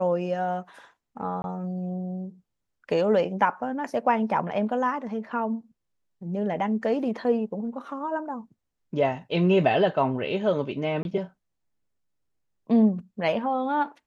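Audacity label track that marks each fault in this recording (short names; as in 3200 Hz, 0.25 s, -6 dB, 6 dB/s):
1.420000	1.440000	gap 21 ms
11.030000	11.050000	gap 21 ms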